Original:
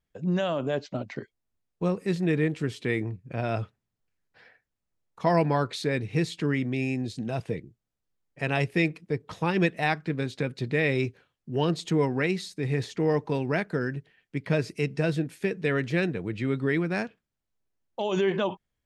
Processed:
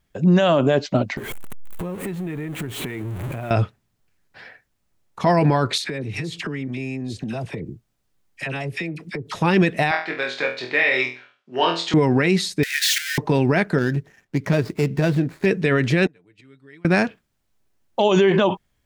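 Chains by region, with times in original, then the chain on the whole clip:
1.17–3.51 s: jump at every zero crossing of -33.5 dBFS + peaking EQ 5.1 kHz -14.5 dB + compression 8:1, threshold -39 dBFS
5.78–9.36 s: phase dispersion lows, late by 52 ms, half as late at 1.2 kHz + compression 12:1, threshold -37 dBFS
9.91–11.94 s: high-pass 750 Hz + distance through air 130 m + flutter echo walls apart 4.1 m, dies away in 0.37 s
12.63–13.18 s: jump at every zero crossing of -28 dBFS + steep high-pass 1.5 kHz 96 dB/octave
13.78–15.46 s: median filter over 15 samples + compression 2:1, threshold -31 dBFS
16.06–16.85 s: inverted gate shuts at -27 dBFS, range -34 dB + tilt EQ +2 dB/octave + comb 6.8 ms, depth 56%
whole clip: band-stop 480 Hz, Q 12; loudness maximiser +20 dB; trim -7 dB

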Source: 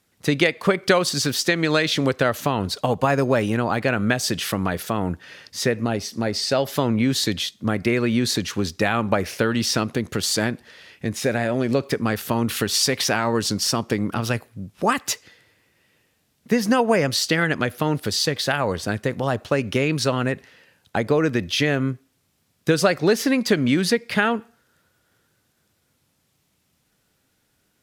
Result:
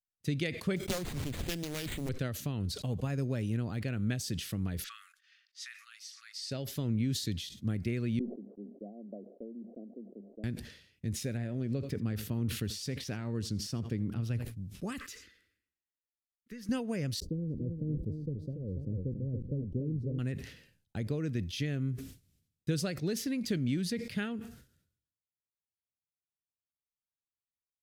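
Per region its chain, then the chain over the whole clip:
0.76–2.09 s: careless resampling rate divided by 8×, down none, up hold + loudspeaker Doppler distortion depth 0.97 ms
4.84–6.51 s: level-controlled noise filter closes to 2.9 kHz, open at -19.5 dBFS + brick-wall FIR high-pass 1.1 kHz
8.19–10.44 s: zero-crossing glitches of -15.5 dBFS + Chebyshev band-pass 200–700 Hz, order 5 + tilt EQ +4 dB/octave
11.37–14.45 s: treble shelf 3.4 kHz -9 dB + delay 84 ms -21 dB
14.98–16.69 s: peaking EQ 1.3 kHz +14.5 dB 1.5 oct + compression 2:1, threshold -34 dBFS + static phaser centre 320 Hz, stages 4
17.20–20.19 s: send-on-delta sampling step -36 dBFS + elliptic low-pass 530 Hz + feedback delay 285 ms, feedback 20%, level -7.5 dB
whole clip: expander -40 dBFS; amplifier tone stack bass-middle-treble 10-0-1; decay stretcher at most 83 dB/s; trim +5.5 dB

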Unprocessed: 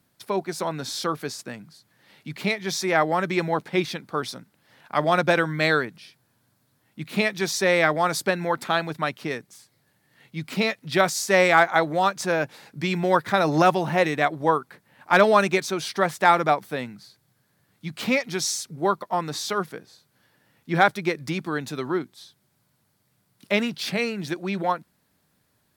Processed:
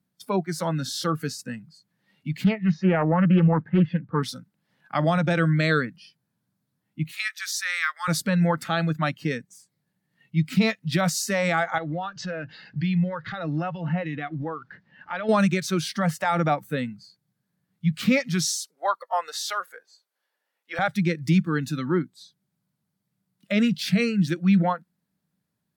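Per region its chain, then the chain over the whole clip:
2.44–4.23 s: low-pass 1.7 kHz + peaking EQ 95 Hz +6 dB 1.4 oct + loudspeaker Doppler distortion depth 0.5 ms
7.11–8.08 s: high-pass 1.2 kHz 24 dB/octave + peaking EQ 2.9 kHz -4.5 dB 1.3 oct
11.78–15.29 s: companding laws mixed up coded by mu + low-pass 5.1 kHz 24 dB/octave + compression 2.5:1, threshold -32 dBFS
18.52–20.79 s: high-pass 470 Hz 24 dB/octave + short-mantissa float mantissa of 8-bit
whole clip: peaking EQ 180 Hz +13.5 dB 0.76 oct; peak limiter -11 dBFS; spectral noise reduction 15 dB

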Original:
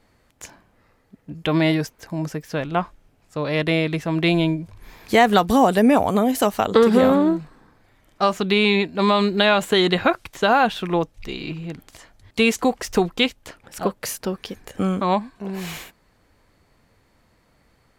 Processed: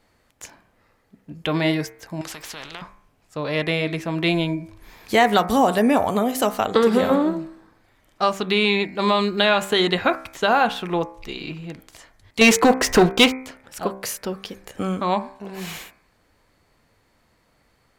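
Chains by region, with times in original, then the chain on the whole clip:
2.21–2.82 s: low-pass 2.4 kHz 6 dB/octave + compression 5:1, threshold -24 dBFS + spectrum-flattening compressor 4:1
12.41–13.39 s: waveshaping leveller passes 3 + treble shelf 6 kHz -4.5 dB
whole clip: bass shelf 330 Hz -4 dB; de-hum 64.83 Hz, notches 39

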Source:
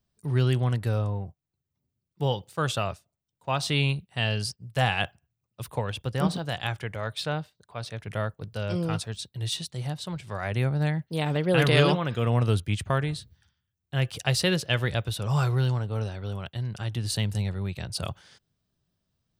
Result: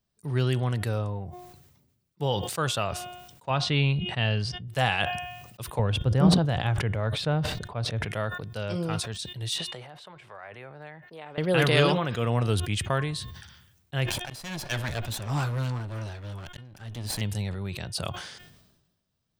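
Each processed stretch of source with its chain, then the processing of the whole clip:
3.50–4.68 s: low-pass 3.7 kHz + bass shelf 160 Hz +7.5 dB
5.79–8.05 s: tilt EQ -3 dB/octave + decay stretcher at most 130 dB/s
9.58–11.38 s: three-band isolator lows -15 dB, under 410 Hz, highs -15 dB, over 2.7 kHz + compression 2:1, threshold -45 dBFS
14.06–17.21 s: comb filter that takes the minimum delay 1.2 ms + slow attack 505 ms
whole clip: bass shelf 180 Hz -4.5 dB; de-hum 358.5 Hz, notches 10; decay stretcher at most 50 dB/s

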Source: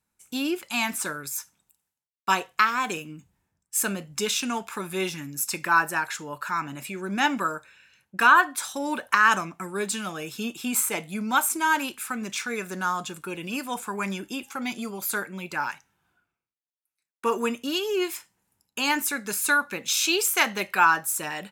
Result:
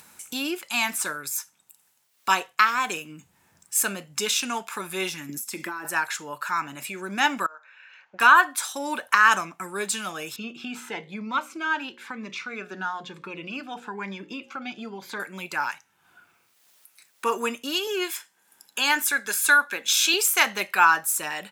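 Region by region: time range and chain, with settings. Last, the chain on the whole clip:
5.29–5.85 s: treble shelf 10 kHz +6 dB + compression 12:1, threshold -32 dBFS + small resonant body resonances 230/330/2000/3300 Hz, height 13 dB
7.46–8.20 s: three-band isolator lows -24 dB, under 550 Hz, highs -19 dB, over 2.6 kHz + compression 8:1, threshold -41 dBFS + careless resampling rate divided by 3×, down none, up filtered
10.36–15.20 s: distance through air 240 m + hum notches 60/120/180/240/300/360/420/480/540 Hz + Shepard-style phaser rising 1 Hz
17.87–20.14 s: high-pass 250 Hz + small resonant body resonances 1.6/3.4 kHz, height 11 dB, ringing for 25 ms
whole clip: high-pass 96 Hz; bass shelf 420 Hz -9 dB; upward compressor, threshold -34 dBFS; trim +2.5 dB

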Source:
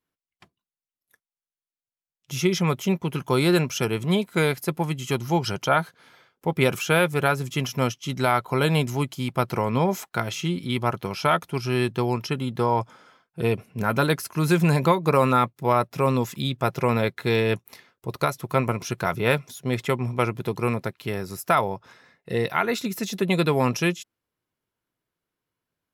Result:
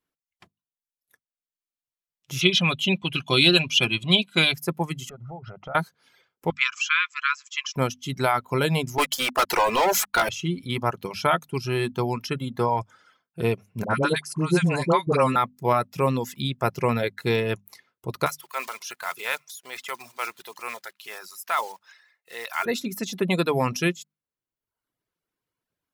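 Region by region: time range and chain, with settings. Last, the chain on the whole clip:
2.41–4.54 s: low-pass 11 kHz 24 dB/octave + high-order bell 3.2 kHz +15.5 dB 1 oct + comb of notches 450 Hz
5.09–5.75 s: low-pass 1.2 kHz + compression 5:1, threshold -35 dBFS + comb 1.5 ms, depth 54%
6.50–7.76 s: brick-wall FIR band-pass 1–7.8 kHz + dynamic bell 2.5 kHz, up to +6 dB, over -38 dBFS, Q 2.3
8.98–10.29 s: partial rectifier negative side -7 dB + high-pass 600 Hz + waveshaping leveller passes 5
13.84–15.36 s: steep low-pass 11 kHz 96 dB/octave + phase dispersion highs, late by 66 ms, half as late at 730 Hz
18.26–22.66 s: block-companded coder 5-bit + high-pass 1 kHz + transient shaper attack -4 dB, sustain +4 dB
whole clip: hum notches 50/100/150/200/250 Hz; reverb removal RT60 0.82 s

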